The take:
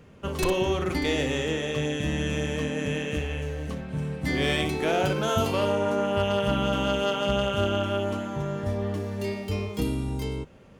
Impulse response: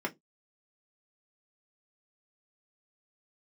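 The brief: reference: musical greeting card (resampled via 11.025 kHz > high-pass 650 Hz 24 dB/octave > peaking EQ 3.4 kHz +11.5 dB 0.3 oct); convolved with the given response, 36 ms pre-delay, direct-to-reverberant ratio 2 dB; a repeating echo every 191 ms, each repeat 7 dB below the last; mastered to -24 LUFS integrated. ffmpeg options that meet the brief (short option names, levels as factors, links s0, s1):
-filter_complex "[0:a]aecho=1:1:191|382|573|764|955:0.447|0.201|0.0905|0.0407|0.0183,asplit=2[s0][s1];[1:a]atrim=start_sample=2205,adelay=36[s2];[s1][s2]afir=irnorm=-1:irlink=0,volume=0.422[s3];[s0][s3]amix=inputs=2:normalize=0,aresample=11025,aresample=44100,highpass=f=650:w=0.5412,highpass=f=650:w=1.3066,equalizer=f=3400:t=o:w=0.3:g=11.5,volume=1.19"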